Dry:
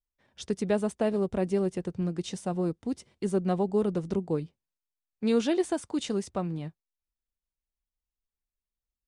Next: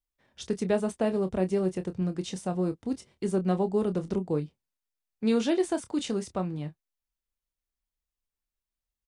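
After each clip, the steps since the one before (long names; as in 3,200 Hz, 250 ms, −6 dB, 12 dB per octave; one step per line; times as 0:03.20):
double-tracking delay 27 ms −10 dB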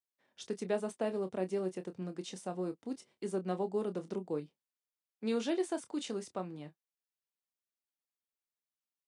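high-pass filter 240 Hz 12 dB per octave
level −6.5 dB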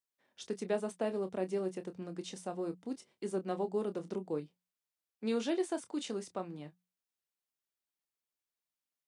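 mains-hum notches 60/120/180 Hz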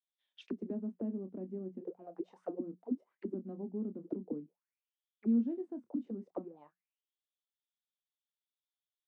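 high-shelf EQ 2,900 Hz −9 dB
envelope filter 240–3,500 Hz, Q 8.5, down, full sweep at −34.5 dBFS
level +10 dB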